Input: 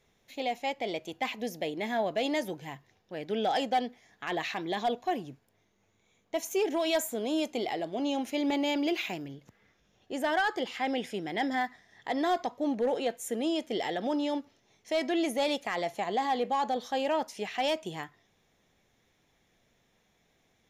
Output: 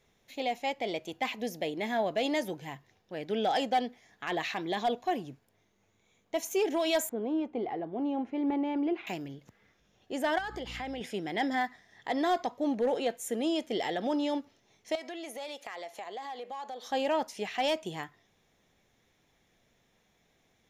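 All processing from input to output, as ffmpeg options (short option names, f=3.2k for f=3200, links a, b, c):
-filter_complex "[0:a]asettb=1/sr,asplit=3[a][b][c];[a]atrim=end=7.094[d];[b]atrim=start=7.09:end=9.07,asetpts=PTS-STARTPTS,afade=t=in:d=0.004:c=qsin,afade=t=out:st=1.976:d=0.004:c=qsin,lowpass=1.2k,equalizer=f=610:t=o:w=0.21:g=-9.5[e];[c]atrim=start=9.066[f];[d][e]acrossfade=d=0.004:c1=hsin:c2=qsin[g];[g][f]acrossfade=d=0.004:c1=qsin:c2=hsin,asettb=1/sr,asplit=3[h][i][j];[h]atrim=end=10.384[k];[i]atrim=start=10.38:end=11.01,asetpts=PTS-STARTPTS,afade=t=in:d=0.004:c=qsin,afade=t=out:st=0.626:d=0.004:c=qsin,aeval=exprs='val(0)+0.00631*(sin(2*PI*60*n/s)+sin(2*PI*2*60*n/s)/2+sin(2*PI*3*60*n/s)/3+sin(2*PI*4*60*n/s)/4+sin(2*PI*5*60*n/s)/5)':c=same,acompressor=threshold=-34dB:ratio=5:attack=3.2:release=140:knee=1:detection=peak[l];[j]atrim=start=11.006[m];[k][l]acrossfade=d=0.004:c1=hsin:c2=qsin[n];[n][m]acrossfade=d=0.004:c1=qsin:c2=hsin,asettb=1/sr,asplit=3[o][p][q];[o]atrim=end=14.954[r];[p]atrim=start=14.95:end=16.87,asetpts=PTS-STARTPTS,afade=t=in:d=0.004:c=qsin,afade=t=out:st=1.916:d=0.004:c=qsin,highpass=430,acompressor=threshold=-40dB:ratio=3:attack=3.2:release=140:knee=1:detection=peak[s];[q]atrim=start=16.866[t];[r][s]acrossfade=d=0.004:c1=hsin:c2=qsin[u];[u][t]acrossfade=d=0.004:c1=qsin:c2=hsin"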